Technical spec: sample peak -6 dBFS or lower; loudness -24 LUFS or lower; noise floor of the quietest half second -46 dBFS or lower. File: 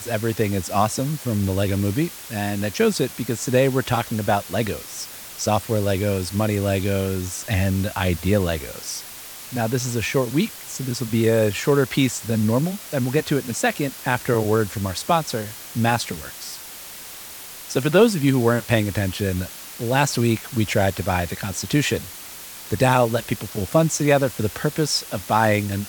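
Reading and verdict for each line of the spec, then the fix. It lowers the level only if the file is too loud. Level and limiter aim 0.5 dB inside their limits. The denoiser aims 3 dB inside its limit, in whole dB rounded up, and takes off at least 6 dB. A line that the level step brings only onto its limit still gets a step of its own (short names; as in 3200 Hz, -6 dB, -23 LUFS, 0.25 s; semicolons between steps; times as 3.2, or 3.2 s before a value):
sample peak -3.5 dBFS: fail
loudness -22.0 LUFS: fail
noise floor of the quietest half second -38 dBFS: fail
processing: denoiser 9 dB, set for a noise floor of -38 dBFS; gain -2.5 dB; limiter -6.5 dBFS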